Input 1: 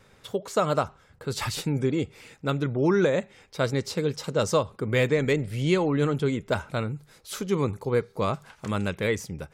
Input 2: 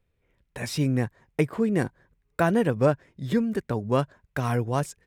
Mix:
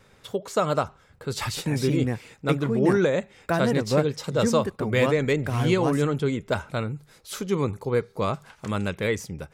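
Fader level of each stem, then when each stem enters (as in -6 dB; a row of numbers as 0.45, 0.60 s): +0.5, -2.0 dB; 0.00, 1.10 s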